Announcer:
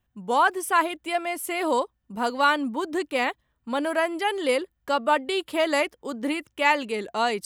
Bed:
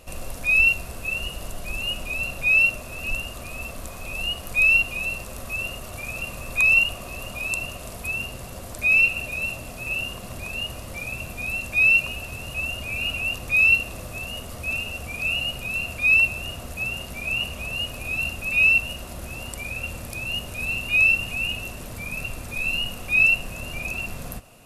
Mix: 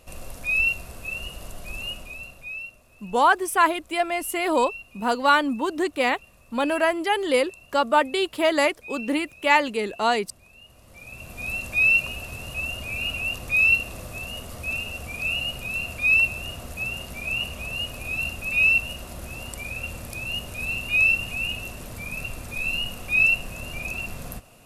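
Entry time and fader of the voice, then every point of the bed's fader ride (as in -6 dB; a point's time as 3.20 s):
2.85 s, +2.5 dB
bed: 1.86 s -4.5 dB
2.72 s -20.5 dB
10.62 s -20.5 dB
11.48 s -1.5 dB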